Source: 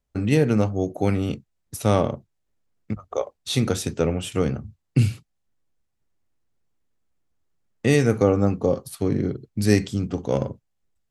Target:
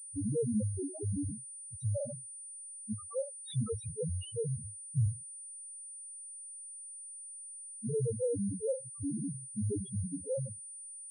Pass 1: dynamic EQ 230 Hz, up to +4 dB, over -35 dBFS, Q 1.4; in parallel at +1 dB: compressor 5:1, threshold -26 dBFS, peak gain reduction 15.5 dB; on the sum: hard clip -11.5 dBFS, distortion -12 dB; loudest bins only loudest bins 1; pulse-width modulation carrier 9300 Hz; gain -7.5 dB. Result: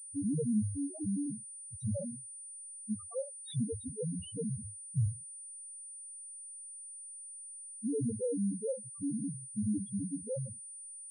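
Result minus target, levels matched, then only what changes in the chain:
compressor: peak gain reduction +8.5 dB; 1000 Hz band -4.5 dB
change: dynamic EQ 850 Hz, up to +4 dB, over -35 dBFS, Q 1.4; change: compressor 5:1, threshold -17.5 dBFS, peak gain reduction 7 dB

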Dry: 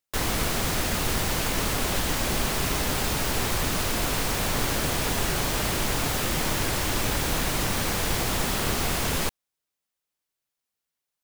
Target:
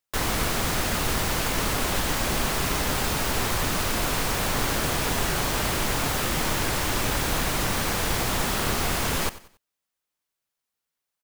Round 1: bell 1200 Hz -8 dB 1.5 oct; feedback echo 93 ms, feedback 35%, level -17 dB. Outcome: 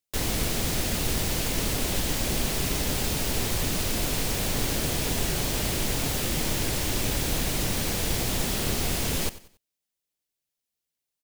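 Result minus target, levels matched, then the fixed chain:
1000 Hz band -6.5 dB
bell 1200 Hz +2.5 dB 1.5 oct; feedback echo 93 ms, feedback 35%, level -17 dB

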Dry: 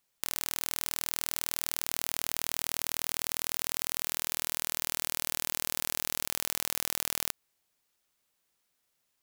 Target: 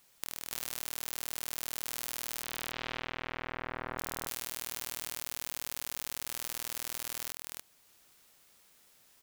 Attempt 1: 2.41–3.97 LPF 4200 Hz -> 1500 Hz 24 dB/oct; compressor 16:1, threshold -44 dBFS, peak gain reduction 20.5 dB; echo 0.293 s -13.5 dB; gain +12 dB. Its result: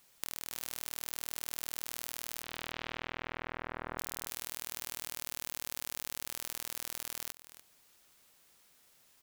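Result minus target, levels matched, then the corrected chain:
echo-to-direct -11.5 dB
2.41–3.97 LPF 4200 Hz -> 1500 Hz 24 dB/oct; compressor 16:1, threshold -44 dBFS, peak gain reduction 20.5 dB; echo 0.293 s -2 dB; gain +12 dB

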